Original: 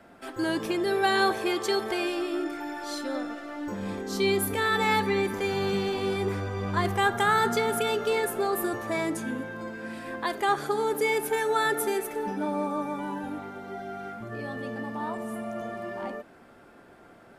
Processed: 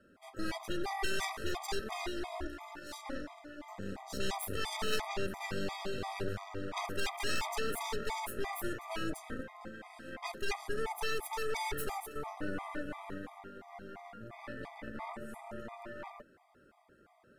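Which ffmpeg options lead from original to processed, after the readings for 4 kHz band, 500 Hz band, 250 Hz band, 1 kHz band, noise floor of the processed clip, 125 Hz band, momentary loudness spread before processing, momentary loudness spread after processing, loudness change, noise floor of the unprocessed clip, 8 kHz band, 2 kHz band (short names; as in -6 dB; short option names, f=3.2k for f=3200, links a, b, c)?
-7.5 dB, -13.0 dB, -12.5 dB, -12.0 dB, -64 dBFS, -10.0 dB, 13 LU, 13 LU, -11.0 dB, -53 dBFS, -7.0 dB, -10.5 dB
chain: -af "aeval=exprs='0.266*(cos(1*acos(clip(val(0)/0.266,-1,1)))-cos(1*PI/2))+0.133*(cos(3*acos(clip(val(0)/0.266,-1,1)))-cos(3*PI/2))+0.0335*(cos(8*acos(clip(val(0)/0.266,-1,1)))-cos(8*PI/2))':c=same,equalizer=f=64:w=2.4:g=3.5,afftfilt=real='re*gt(sin(2*PI*2.9*pts/sr)*(1-2*mod(floor(b*sr/1024/640),2)),0)':imag='im*gt(sin(2*PI*2.9*pts/sr)*(1-2*mod(floor(b*sr/1024/640),2)),0)':win_size=1024:overlap=0.75,volume=-3dB"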